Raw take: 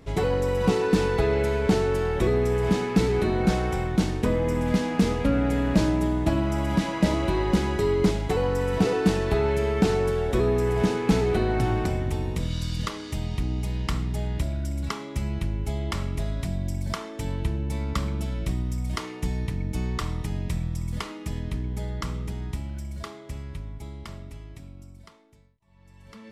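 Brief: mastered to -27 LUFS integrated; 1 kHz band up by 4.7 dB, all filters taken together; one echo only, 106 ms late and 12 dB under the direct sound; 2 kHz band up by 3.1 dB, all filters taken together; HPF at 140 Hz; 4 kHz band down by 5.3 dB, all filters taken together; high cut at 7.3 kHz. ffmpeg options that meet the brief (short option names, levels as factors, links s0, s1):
-af "highpass=140,lowpass=7300,equalizer=f=1000:t=o:g=5.5,equalizer=f=2000:t=o:g=4,equalizer=f=4000:t=o:g=-9,aecho=1:1:106:0.251,volume=0.891"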